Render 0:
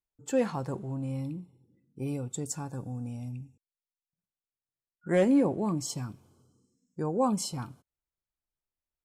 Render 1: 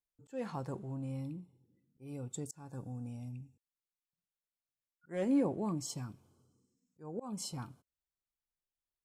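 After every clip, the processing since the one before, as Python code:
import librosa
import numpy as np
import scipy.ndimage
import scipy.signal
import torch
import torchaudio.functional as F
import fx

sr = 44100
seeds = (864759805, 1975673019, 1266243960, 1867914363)

y = fx.auto_swell(x, sr, attack_ms=272.0)
y = F.gain(torch.from_numpy(y), -6.0).numpy()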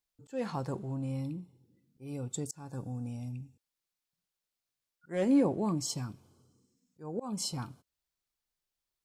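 y = fx.peak_eq(x, sr, hz=4600.0, db=4.0, octaves=0.86)
y = F.gain(torch.from_numpy(y), 4.5).numpy()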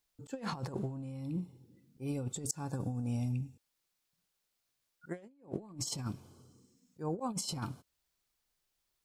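y = fx.over_compress(x, sr, threshold_db=-39.0, ratio=-0.5)
y = F.gain(torch.from_numpy(y), 1.0).numpy()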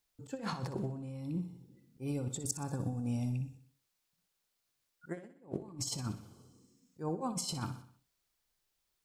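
y = fx.echo_feedback(x, sr, ms=62, feedback_pct=49, wet_db=-12)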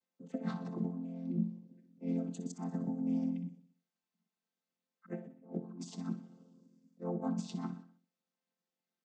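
y = fx.chord_vocoder(x, sr, chord='major triad', root=53)
y = F.gain(torch.from_numpy(y), 1.0).numpy()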